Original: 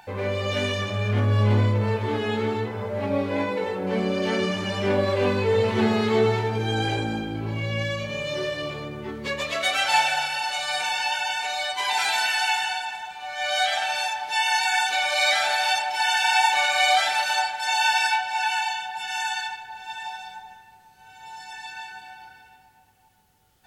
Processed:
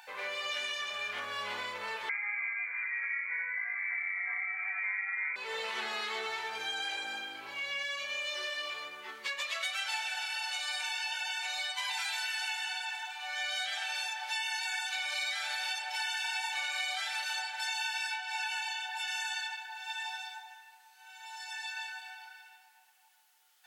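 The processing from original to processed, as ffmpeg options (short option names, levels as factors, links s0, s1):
-filter_complex "[0:a]asettb=1/sr,asplit=3[s0][s1][s2];[s0]atrim=end=2.094[s3];[s1]atrim=start=2.09:end=5.36,asetpts=PTS-STARTPTS,afade=t=in:d=0.004:c=qsin,afade=t=out:st=3.266:d=0.004:c=qsin,lowpass=f=2100:t=q:w=0.5098,lowpass=f=2100:t=q:w=0.6013,lowpass=f=2100:t=q:w=0.9,lowpass=f=2100:t=q:w=2.563,afreqshift=-2500[s4];[s2]atrim=start=5.356[s5];[s3][s4]acrossfade=d=0.004:c1=hsin:c2=qsin[s6];[s6][s5]acrossfade=d=0.004:c1=qsin:c2=hsin,highpass=1300,acompressor=threshold=0.0224:ratio=6"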